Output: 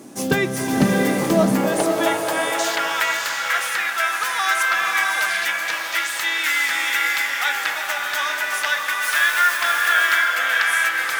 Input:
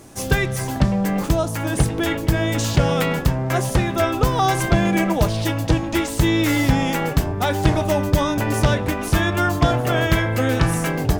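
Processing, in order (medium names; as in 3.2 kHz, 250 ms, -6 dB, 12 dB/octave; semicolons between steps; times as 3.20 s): 9.01–9.56 s: added noise white -33 dBFS; high-pass sweep 230 Hz -> 1.6 kHz, 0.77–2.89 s; swelling reverb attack 670 ms, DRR 0.5 dB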